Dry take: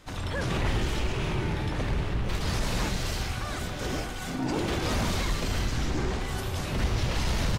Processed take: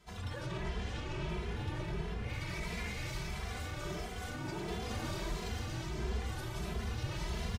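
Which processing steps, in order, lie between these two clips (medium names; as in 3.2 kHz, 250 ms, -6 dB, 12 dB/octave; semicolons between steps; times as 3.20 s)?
0.46–1.29 s: low-pass 7.2 kHz 12 dB/octave; 2.21–3.07 s: peaking EQ 2.2 kHz +13 dB 0.37 oct; peak limiter -23 dBFS, peak gain reduction 6 dB; comb of notches 270 Hz; echo whose repeats swap between lows and highs 115 ms, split 1.2 kHz, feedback 85%, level -7.5 dB; on a send at -7 dB: reverberation RT60 5.2 s, pre-delay 42 ms; on the sum: endless flanger 2.6 ms +1.5 Hz; trim -5.5 dB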